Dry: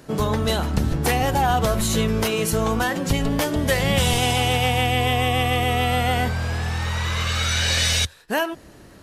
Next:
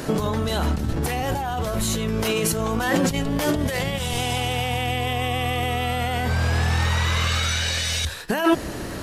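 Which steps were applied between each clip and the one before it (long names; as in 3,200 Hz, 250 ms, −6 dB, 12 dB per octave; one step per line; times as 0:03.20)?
compressor whose output falls as the input rises −30 dBFS, ratio −1
mains-hum notches 50/100/150/200 Hz
level +7 dB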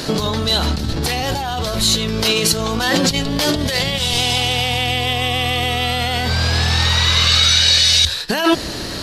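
parametric band 4,300 Hz +14.5 dB 0.98 octaves
level +3 dB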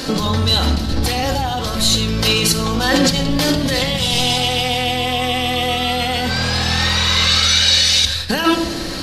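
rectangular room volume 3,400 cubic metres, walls furnished, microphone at 2.1 metres
level −1 dB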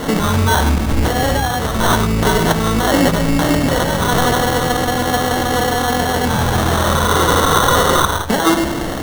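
in parallel at 0 dB: brickwall limiter −9 dBFS, peak gain reduction 7 dB
on the sum: decimation without filtering 18×
level −3 dB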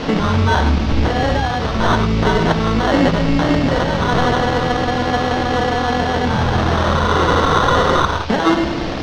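noise in a band 2,200–5,900 Hz −31 dBFS
high-frequency loss of the air 180 metres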